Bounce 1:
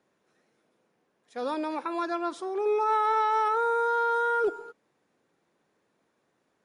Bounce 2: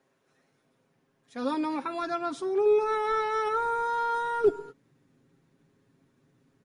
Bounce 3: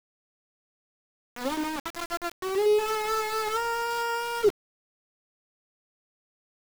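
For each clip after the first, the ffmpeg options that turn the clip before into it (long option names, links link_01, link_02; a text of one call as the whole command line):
ffmpeg -i in.wav -af "asubboost=boost=7.5:cutoff=240,aecho=1:1:7.4:0.6" out.wav
ffmpeg -i in.wav -af "aeval=exprs='val(0)*gte(abs(val(0)),0.0376)':channel_layout=same" out.wav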